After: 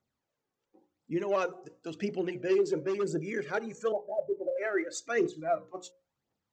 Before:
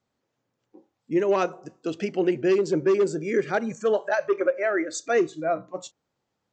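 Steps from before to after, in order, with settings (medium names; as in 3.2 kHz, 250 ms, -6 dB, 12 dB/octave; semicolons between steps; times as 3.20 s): 3.92–4.56 s: elliptic low-pass 810 Hz, stop band 40 dB; hum notches 60/120/180/240/300/360/420/480/540 Hz; phaser 0.95 Hz, delay 2.8 ms, feedback 52%; trim -7.5 dB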